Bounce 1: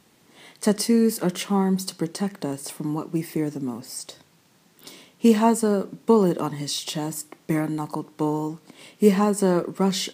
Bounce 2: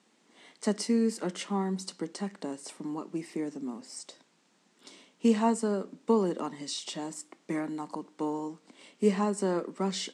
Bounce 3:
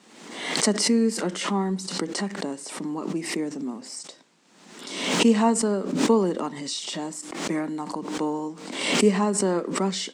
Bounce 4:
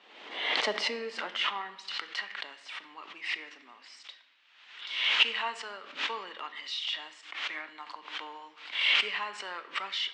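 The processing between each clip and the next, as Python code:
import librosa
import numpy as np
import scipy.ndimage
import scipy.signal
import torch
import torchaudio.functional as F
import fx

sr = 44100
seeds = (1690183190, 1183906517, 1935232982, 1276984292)

y1 = scipy.signal.sosfilt(scipy.signal.cheby1(3, 1.0, [210.0, 8100.0], 'bandpass', fs=sr, output='sos'), x)
y1 = F.gain(torch.from_numpy(y1), -7.0).numpy()
y2 = fx.pre_swell(y1, sr, db_per_s=57.0)
y2 = F.gain(torch.from_numpy(y2), 5.0).numpy()
y3 = fx.filter_sweep_highpass(y2, sr, from_hz=540.0, to_hz=1500.0, start_s=0.41, end_s=1.89, q=1.0)
y3 = fx.ladder_lowpass(y3, sr, hz=3700.0, resonance_pct=45)
y3 = fx.room_shoebox(y3, sr, seeds[0], volume_m3=550.0, walls='mixed', distance_m=0.38)
y3 = F.gain(torch.from_numpy(y3), 5.5).numpy()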